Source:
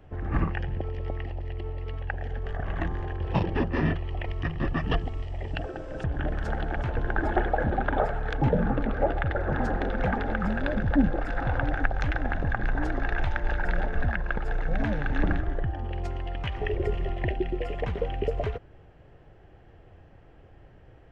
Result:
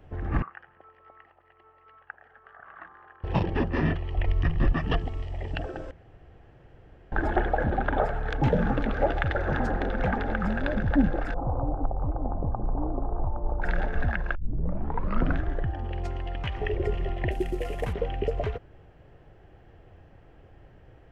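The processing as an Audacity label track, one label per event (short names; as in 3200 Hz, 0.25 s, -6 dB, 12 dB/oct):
0.420000	3.240000	band-pass 1300 Hz, Q 4.5
4.170000	4.720000	low shelf 87 Hz +10.5 dB
5.910000	7.120000	room tone
8.430000	9.590000	high shelf 2600 Hz +9.5 dB
11.340000	13.620000	elliptic low-pass 1100 Hz
14.350000	14.350000	tape start 1.05 s
17.310000	17.930000	CVSD 64 kbps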